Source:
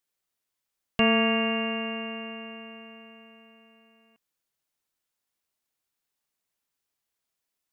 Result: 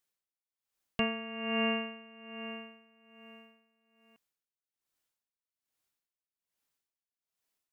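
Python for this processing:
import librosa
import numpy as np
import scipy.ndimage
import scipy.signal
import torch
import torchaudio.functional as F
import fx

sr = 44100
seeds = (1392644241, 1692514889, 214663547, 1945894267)

y = x * 10.0 ** (-19 * (0.5 - 0.5 * np.cos(2.0 * np.pi * 1.2 * np.arange(len(x)) / sr)) / 20.0)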